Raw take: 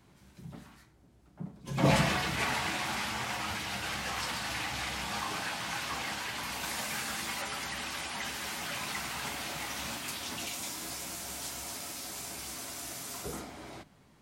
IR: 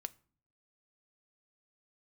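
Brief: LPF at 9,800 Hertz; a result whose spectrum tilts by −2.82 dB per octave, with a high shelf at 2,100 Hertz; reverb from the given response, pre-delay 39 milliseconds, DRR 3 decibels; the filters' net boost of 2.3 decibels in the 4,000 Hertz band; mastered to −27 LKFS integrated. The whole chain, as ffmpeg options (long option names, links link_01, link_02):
-filter_complex "[0:a]lowpass=9800,highshelf=frequency=2100:gain=-3,equalizer=frequency=4000:width_type=o:gain=6,asplit=2[link_01][link_02];[1:a]atrim=start_sample=2205,adelay=39[link_03];[link_02][link_03]afir=irnorm=-1:irlink=0,volume=0dB[link_04];[link_01][link_04]amix=inputs=2:normalize=0,volume=5.5dB"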